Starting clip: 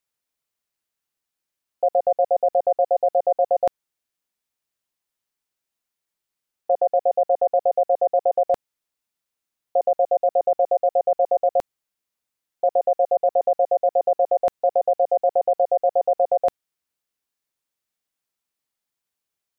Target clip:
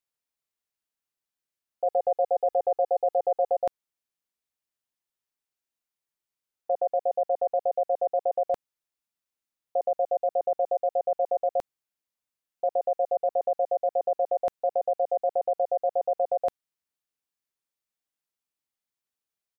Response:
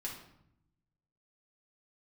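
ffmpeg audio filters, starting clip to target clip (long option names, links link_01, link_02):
-filter_complex "[0:a]asplit=3[link_01][link_02][link_03];[link_01]afade=type=out:start_time=1.85:duration=0.02[link_04];[link_02]aecho=1:1:2.4:0.99,afade=type=in:start_time=1.85:duration=0.02,afade=type=out:start_time=3.55:duration=0.02[link_05];[link_03]afade=type=in:start_time=3.55:duration=0.02[link_06];[link_04][link_05][link_06]amix=inputs=3:normalize=0,volume=-6.5dB"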